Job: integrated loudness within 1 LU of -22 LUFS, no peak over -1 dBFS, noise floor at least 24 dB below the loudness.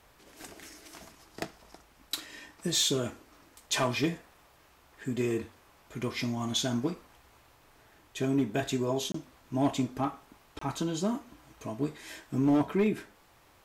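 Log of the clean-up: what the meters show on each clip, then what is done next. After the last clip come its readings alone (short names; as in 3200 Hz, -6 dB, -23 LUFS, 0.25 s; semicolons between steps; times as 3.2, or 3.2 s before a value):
clipped 0.4%; flat tops at -19.5 dBFS; dropouts 2; longest dropout 24 ms; loudness -31.5 LUFS; peak -19.5 dBFS; loudness target -22.0 LUFS
-> clip repair -19.5 dBFS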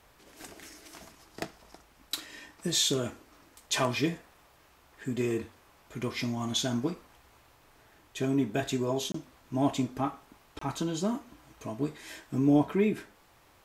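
clipped 0.0%; dropouts 2; longest dropout 24 ms
-> interpolate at 9.12/10.59, 24 ms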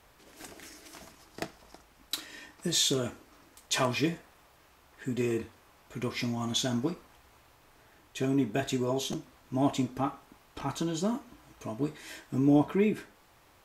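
dropouts 0; loudness -31.0 LUFS; peak -12.5 dBFS; loudness target -22.0 LUFS
-> gain +9 dB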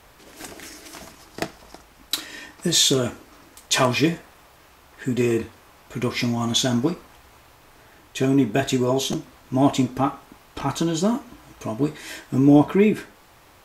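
loudness -22.0 LUFS; peak -3.5 dBFS; noise floor -52 dBFS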